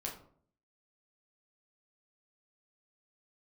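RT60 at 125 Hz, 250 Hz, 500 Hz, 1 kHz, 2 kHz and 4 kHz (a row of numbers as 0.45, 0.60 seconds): 0.75, 0.70, 0.60, 0.50, 0.35, 0.30 seconds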